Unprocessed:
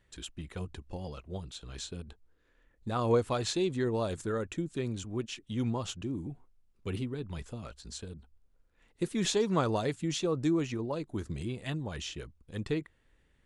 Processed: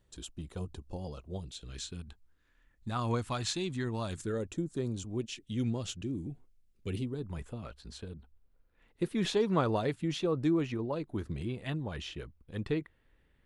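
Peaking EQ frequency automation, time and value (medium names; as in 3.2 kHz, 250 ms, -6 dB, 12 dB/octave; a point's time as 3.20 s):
peaking EQ -11 dB 1 oct
1.26 s 2 kHz
2.04 s 470 Hz
4.10 s 470 Hz
4.65 s 3 kHz
5.46 s 980 Hz
6.90 s 980 Hz
7.57 s 7.1 kHz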